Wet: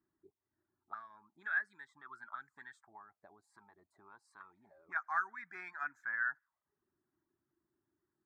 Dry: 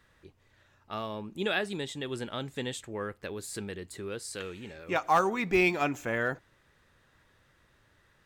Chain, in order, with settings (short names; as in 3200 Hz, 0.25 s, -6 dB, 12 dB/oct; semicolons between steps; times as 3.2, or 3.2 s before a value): reverb removal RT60 0.52 s; 2.88–3.87 compressor, threshold -37 dBFS, peak gain reduction 6 dB; fixed phaser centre 1200 Hz, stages 4; auto-wah 330–1600 Hz, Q 6.6, up, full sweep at -37 dBFS; gain +3.5 dB